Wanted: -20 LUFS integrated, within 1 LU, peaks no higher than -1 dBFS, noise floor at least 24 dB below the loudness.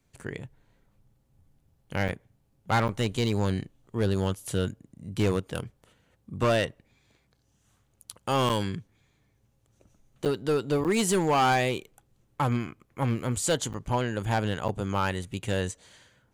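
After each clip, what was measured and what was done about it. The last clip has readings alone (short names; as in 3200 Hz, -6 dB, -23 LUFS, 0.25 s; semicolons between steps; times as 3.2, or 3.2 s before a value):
clipped 1.1%; flat tops at -18.5 dBFS; dropouts 7; longest dropout 7.8 ms; loudness -28.5 LUFS; peak -18.5 dBFS; loudness target -20.0 LUFS
-> clip repair -18.5 dBFS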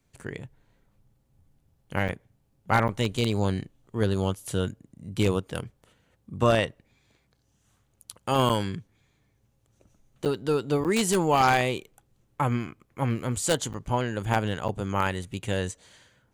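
clipped 0.0%; dropouts 7; longest dropout 7.8 ms
-> interpolate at 2.08/2.88/8.49/10.25/10.84/13.73/14.68, 7.8 ms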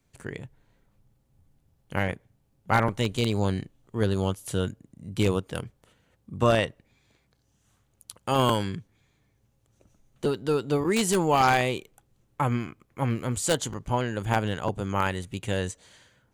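dropouts 0; loudness -27.0 LUFS; peak -9.5 dBFS; loudness target -20.0 LUFS
-> gain +7 dB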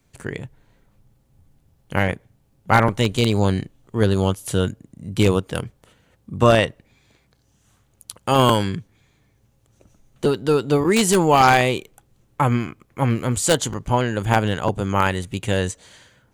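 loudness -20.0 LUFS; peak -2.5 dBFS; noise floor -62 dBFS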